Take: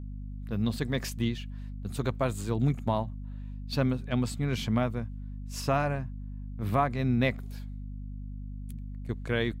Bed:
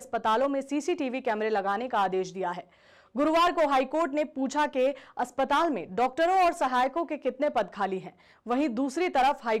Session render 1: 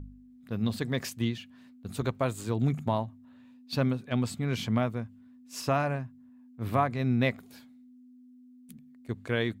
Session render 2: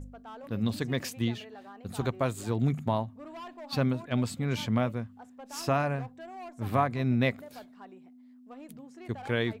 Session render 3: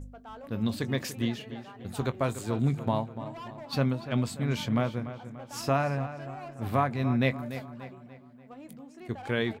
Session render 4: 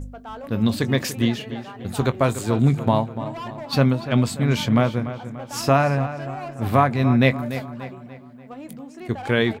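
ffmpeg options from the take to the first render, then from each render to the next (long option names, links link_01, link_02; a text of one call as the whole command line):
ffmpeg -i in.wav -af "bandreject=frequency=50:width_type=h:width=4,bandreject=frequency=100:width_type=h:width=4,bandreject=frequency=150:width_type=h:width=4,bandreject=frequency=200:width_type=h:width=4" out.wav
ffmpeg -i in.wav -i bed.wav -filter_complex "[1:a]volume=-21dB[link_01];[0:a][link_01]amix=inputs=2:normalize=0" out.wav
ffmpeg -i in.wav -filter_complex "[0:a]asplit=2[link_01][link_02];[link_02]adelay=22,volume=-14dB[link_03];[link_01][link_03]amix=inputs=2:normalize=0,asplit=2[link_04][link_05];[link_05]adelay=291,lowpass=frequency=3800:poles=1,volume=-12dB,asplit=2[link_06][link_07];[link_07]adelay=291,lowpass=frequency=3800:poles=1,volume=0.49,asplit=2[link_08][link_09];[link_09]adelay=291,lowpass=frequency=3800:poles=1,volume=0.49,asplit=2[link_10][link_11];[link_11]adelay=291,lowpass=frequency=3800:poles=1,volume=0.49,asplit=2[link_12][link_13];[link_13]adelay=291,lowpass=frequency=3800:poles=1,volume=0.49[link_14];[link_04][link_06][link_08][link_10][link_12][link_14]amix=inputs=6:normalize=0" out.wav
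ffmpeg -i in.wav -af "volume=9dB" out.wav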